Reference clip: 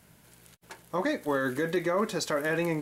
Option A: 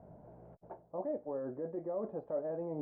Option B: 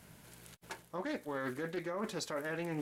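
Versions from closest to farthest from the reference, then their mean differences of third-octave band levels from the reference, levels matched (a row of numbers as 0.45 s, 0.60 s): B, A; 4.5 dB, 13.5 dB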